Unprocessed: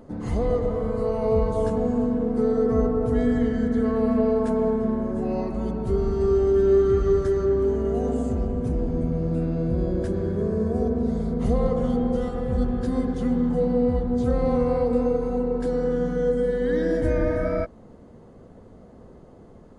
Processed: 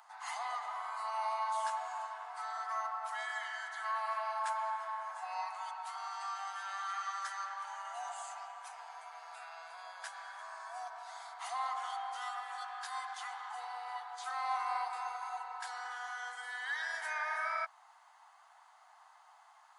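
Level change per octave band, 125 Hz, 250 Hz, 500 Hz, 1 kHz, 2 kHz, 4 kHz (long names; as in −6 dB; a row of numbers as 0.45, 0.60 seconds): below −40 dB, below −40 dB, −29.5 dB, −0.5 dB, +2.0 dB, can't be measured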